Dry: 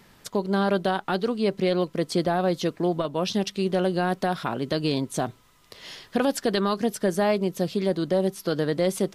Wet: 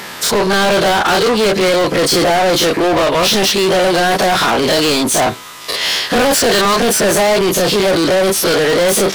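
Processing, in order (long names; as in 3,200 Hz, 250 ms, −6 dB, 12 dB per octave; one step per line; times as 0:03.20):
every bin's largest magnitude spread in time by 60 ms
mid-hump overdrive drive 30 dB, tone 4,200 Hz, clips at −8 dBFS
high-shelf EQ 6,000 Hz +7.5 dB
level +2 dB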